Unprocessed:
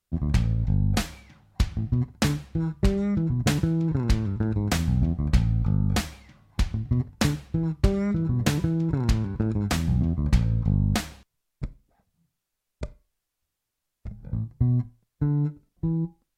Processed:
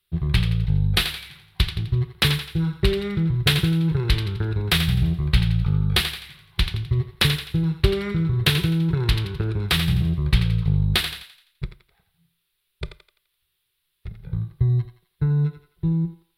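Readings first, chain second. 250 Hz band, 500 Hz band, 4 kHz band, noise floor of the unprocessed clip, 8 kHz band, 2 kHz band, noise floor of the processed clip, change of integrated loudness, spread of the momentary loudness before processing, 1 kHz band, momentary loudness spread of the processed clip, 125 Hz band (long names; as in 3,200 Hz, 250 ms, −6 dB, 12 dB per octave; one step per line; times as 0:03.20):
0.0 dB, +3.5 dB, +13.0 dB, −83 dBFS, +1.5 dB, +9.0 dB, −74 dBFS, +3.5 dB, 13 LU, +1.5 dB, 15 LU, +3.0 dB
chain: drawn EQ curve 100 Hz 0 dB, 170 Hz +3 dB, 260 Hz −23 dB, 370 Hz +6 dB, 600 Hz −9 dB, 1,100 Hz +1 dB, 2,400 Hz +8 dB, 3,700 Hz +14 dB, 6,700 Hz −11 dB, 10,000 Hz +7 dB
feedback echo with a high-pass in the loop 85 ms, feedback 44%, high-pass 540 Hz, level −8 dB
level +2 dB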